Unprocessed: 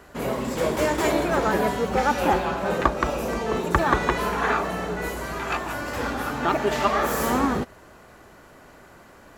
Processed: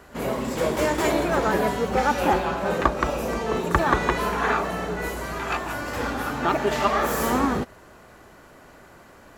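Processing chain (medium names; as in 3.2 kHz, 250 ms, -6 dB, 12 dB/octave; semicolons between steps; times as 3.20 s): pre-echo 35 ms -17 dB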